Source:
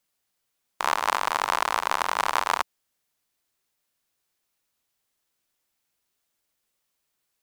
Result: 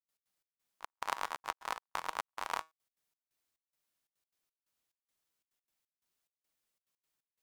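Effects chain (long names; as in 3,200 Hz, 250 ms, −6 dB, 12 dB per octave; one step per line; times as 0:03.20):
volume swells 105 ms
tuned comb filter 160 Hz, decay 0.24 s, harmonics all, mix 40%
gate pattern ".x.xx..xxx..xxxx" 177 BPM −60 dB
level −4 dB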